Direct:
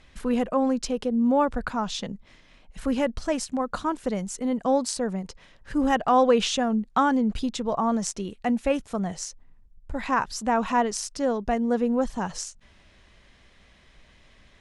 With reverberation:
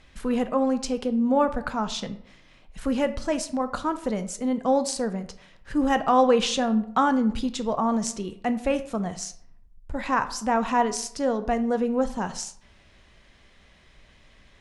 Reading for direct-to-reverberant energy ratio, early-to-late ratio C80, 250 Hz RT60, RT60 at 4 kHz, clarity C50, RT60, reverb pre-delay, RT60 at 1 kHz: 10.0 dB, 17.0 dB, 0.65 s, 0.40 s, 14.0 dB, 0.65 s, 12 ms, 0.65 s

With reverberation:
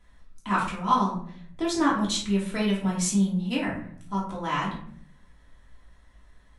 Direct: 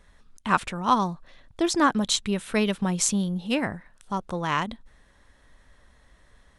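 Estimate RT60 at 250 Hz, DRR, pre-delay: 0.90 s, −6.0 dB, 3 ms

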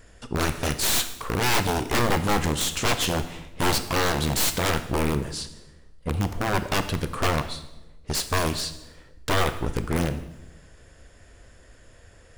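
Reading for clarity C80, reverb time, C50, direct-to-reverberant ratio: 14.0 dB, 1.0 s, 12.0 dB, 10.0 dB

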